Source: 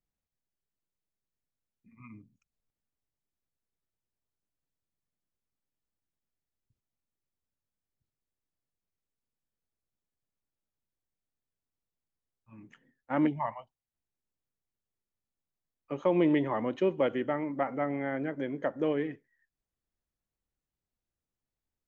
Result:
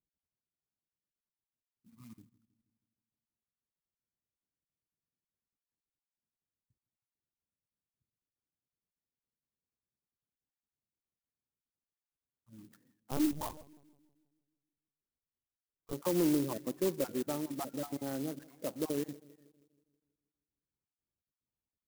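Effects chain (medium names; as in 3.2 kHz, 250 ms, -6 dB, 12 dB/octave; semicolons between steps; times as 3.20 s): random holes in the spectrogram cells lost 30%; high-pass 110 Hz 6 dB/octave; low-pass that closes with the level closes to 1.2 kHz, closed at -33.5 dBFS; low-pass 1.6 kHz 12 dB/octave; peaking EQ 640 Hz -6 dB 1.5 oct; saturation -19.5 dBFS, distortion -24 dB; filtered feedback delay 160 ms, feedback 56%, low-pass 860 Hz, level -19.5 dB; 13.11–15.93 s: LPC vocoder at 8 kHz pitch kept; sampling jitter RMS 0.096 ms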